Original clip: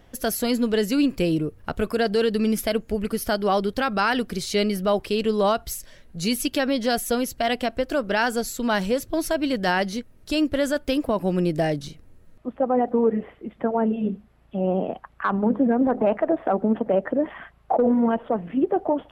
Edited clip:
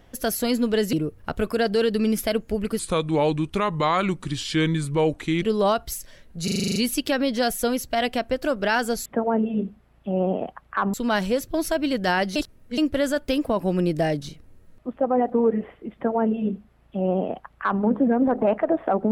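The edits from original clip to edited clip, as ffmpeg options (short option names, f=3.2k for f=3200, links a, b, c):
-filter_complex "[0:a]asplit=16[a][b][c][d][e][f][g][h][i][j][k][l][m][n][o][p];[a]atrim=end=0.932[q];[b]atrim=start=1.328:end=3.194[r];[c]atrim=start=3.19:end=5.22,asetpts=PTS-STARTPTS,asetrate=33957,aresample=44100[s];[d]atrim=start=5.216:end=6.272[t];[e]atrim=start=6.228:end=6.272[u];[f]atrim=start=6.228:end=6.272[v];[g]atrim=start=6.228:end=6.272[w];[h]atrim=start=6.228:end=6.272[x];[i]atrim=start=6.228:end=6.272[y];[j]atrim=start=6.228:end=6.272[z];[k]atrim=start=6.228:end=6.272[aa];[l]atrim=start=6.228:end=8.532[ab];[m]atrim=start=13.528:end=15.412[ac];[n]atrim=start=8.528:end=9.952[ad];[o]atrim=start=9.948:end=10.372,asetpts=PTS-STARTPTS,areverse[ae];[p]atrim=start=10.368[af];[q][r]acrossfade=d=0.004:c1=hsin:c2=hsin[ag];[ag][s]acrossfade=d=0.004:c1=hsin:c2=hsin[ah];[ah][t]acrossfade=d=0.004:c1=hsin:c2=hsin[ai];[ai][u]acrossfade=d=0.004:c1=hsin:c2=hsin[aj];[aj][v]acrossfade=d=0.004:c1=hsin:c2=hsin[ak];[ak][w]acrossfade=d=0.004:c1=hsin:c2=hsin[al];[al][x]acrossfade=d=0.004:c1=hsin:c2=hsin[am];[am][y]acrossfade=d=0.004:c1=hsin:c2=hsin[an];[an][z]acrossfade=d=0.004:c1=hsin:c2=hsin[ao];[ao][aa]acrossfade=d=0.004:c1=hsin:c2=hsin[ap];[ap][ab]acrossfade=d=0.004:c1=hsin:c2=hsin[aq];[aq][ac]acrossfade=d=0.004:c1=hsin:c2=hsin[ar];[ar][ad]acrossfade=d=0.004:c1=hsin:c2=hsin[as];[as][ae]acrossfade=d=0.004:c1=hsin:c2=hsin[at];[at][af]acrossfade=d=0.004:c1=hsin:c2=hsin"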